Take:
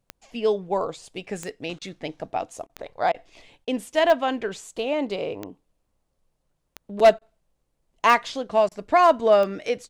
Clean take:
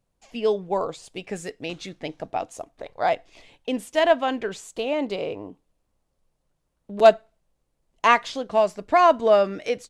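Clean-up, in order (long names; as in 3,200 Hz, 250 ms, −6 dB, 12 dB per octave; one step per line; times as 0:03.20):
clipped peaks rebuilt −8 dBFS
click removal
repair the gap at 0:01.79/0:02.67/0:03.12/0:03.65/0:07.19/0:08.69, 23 ms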